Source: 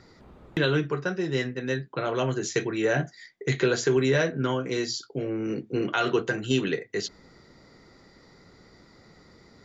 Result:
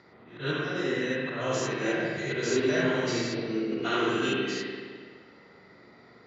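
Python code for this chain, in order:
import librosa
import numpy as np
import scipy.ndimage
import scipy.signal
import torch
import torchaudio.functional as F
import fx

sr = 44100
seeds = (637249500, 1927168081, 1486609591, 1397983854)

y = fx.spec_steps(x, sr, hold_ms=200)
y = fx.stretch_vocoder_free(y, sr, factor=0.65)
y = scipy.signal.sosfilt(scipy.signal.butter(2, 110.0, 'highpass', fs=sr, output='sos'), y)
y = fx.auto_swell(y, sr, attack_ms=146.0)
y = fx.rev_spring(y, sr, rt60_s=1.8, pass_ms=(42, 59), chirp_ms=50, drr_db=-3.5)
y = fx.env_lowpass(y, sr, base_hz=2900.0, full_db=-23.5)
y = fx.tilt_eq(y, sr, slope=1.5)
y = y * librosa.db_to_amplitude(2.5)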